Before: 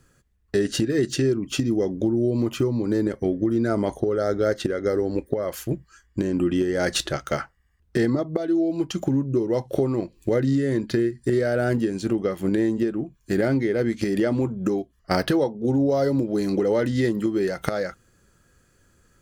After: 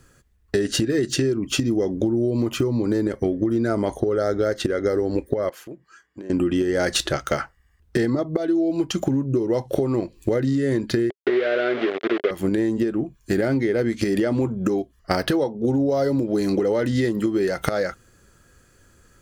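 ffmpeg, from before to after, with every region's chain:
ffmpeg -i in.wav -filter_complex "[0:a]asettb=1/sr,asplit=3[link_01][link_02][link_03];[link_01]atrim=end=5.494[link_04];[link_02]atrim=start=5.49:end=6.3,asetpts=PTS-STARTPTS,afade=type=in:duration=0.004:curve=qsin,afade=type=out:start_time=0.806:duration=0.004:curve=qsin,highpass=240,highshelf=frequency=4000:gain=-11.5,acompressor=threshold=-49dB:ratio=2:attack=3.2:release=140:knee=1:detection=peak[link_05];[link_03]atrim=start=6.296[link_06];[link_04][link_05]acrossfade=duration=0.004:curve1=hsin:curve2=qsin[link_07];[link_07][link_06]acrossfade=duration=0.004:curve1=qsin:curve2=hsin,asettb=1/sr,asplit=3[link_08][link_09][link_10];[link_08]atrim=end=11.104[link_11];[link_09]atrim=start=11.1:end=12.31,asetpts=PTS-STARTPTS,afade=type=in:duration=0.004:curve=qsin,afade=type=out:start_time=1.206:duration=0.004:curve=qsin,aeval=exprs='val(0)*gte(abs(val(0)),0.0562)':channel_layout=same,highpass=380,equalizer=frequency=400:width_type=q:width=4:gain=9,equalizer=frequency=610:width_type=q:width=4:gain=3,equalizer=frequency=930:width_type=q:width=4:gain=-10,equalizer=frequency=1400:width_type=q:width=4:gain=4,equalizer=frequency=2100:width_type=q:width=4:gain=5,equalizer=frequency=3400:width_type=q:width=4:gain=3,lowpass=frequency=3600:width=0.5412,lowpass=frequency=3600:width=1.3066[link_12];[link_10]atrim=start=12.306[link_13];[link_11][link_12]acrossfade=duration=0.004:curve1=hsin:curve2=qsin[link_14];[link_14][link_13]acrossfade=duration=0.004:curve1=qsin:curve2=hsin,equalizer=frequency=170:width=1.8:gain=-3,acompressor=threshold=-23dB:ratio=6,volume=5.5dB" out.wav

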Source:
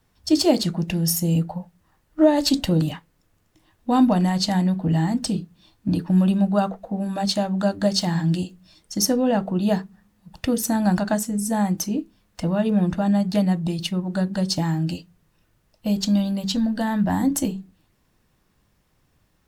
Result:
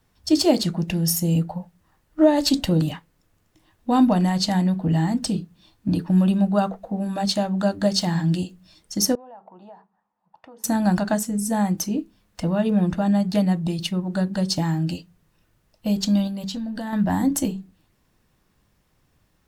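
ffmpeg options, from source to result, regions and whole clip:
ffmpeg -i in.wav -filter_complex "[0:a]asettb=1/sr,asplit=3[link_01][link_02][link_03];[link_01]atrim=end=9.154[link_04];[link_02]atrim=start=9.15:end=10.64,asetpts=PTS-STARTPTS,afade=type=in:duration=0.004:curve=qsin,afade=type=out:start_time=1.486:duration=0.004:curve=qsin,bandpass=frequency=880:width_type=q:width=3.6,acompressor=threshold=-42dB:ratio=4:attack=3.2:release=140:knee=1:detection=peak[link_05];[link_03]atrim=start=10.636[link_06];[link_04][link_05]acrossfade=duration=0.004:curve1=hsin:curve2=qsin[link_07];[link_07][link_06]acrossfade=duration=0.004:curve1=qsin:curve2=hsin,asettb=1/sr,asplit=3[link_08][link_09][link_10];[link_08]atrim=end=16.274[link_11];[link_09]atrim=start=16.27:end=16.93,asetpts=PTS-STARTPTS,afade=type=in:duration=0.004:curve=qsin,afade=type=out:start_time=0.656:duration=0.004:curve=qsin,acompressor=threshold=-26dB:ratio=10:attack=3.2:release=140:knee=1:detection=peak,bandreject=frequency=296.7:width_type=h:width=4,bandreject=frequency=593.4:width_type=h:width=4,bandreject=frequency=890.1:width_type=h:width=4,bandreject=frequency=1186.8:width_type=h:width=4,bandreject=frequency=1483.5:width_type=h:width=4,bandreject=frequency=1780.2:width_type=h:width=4,bandreject=frequency=2076.9:width_type=h:width=4,bandreject=frequency=2373.6:width_type=h:width=4,bandreject=frequency=2670.3:width_type=h:width=4,bandreject=frequency=2967:width_type=h:width=4,bandreject=frequency=3263.7:width_type=h:width=4,bandreject=frequency=3560.4:width_type=h:width=4,bandreject=frequency=3857.1:width_type=h:width=4[link_12];[link_10]atrim=start=16.926[link_13];[link_11][link_12]acrossfade=duration=0.004:curve1=hsin:curve2=qsin[link_14];[link_14][link_13]acrossfade=duration=0.004:curve1=qsin:curve2=hsin" out.wav

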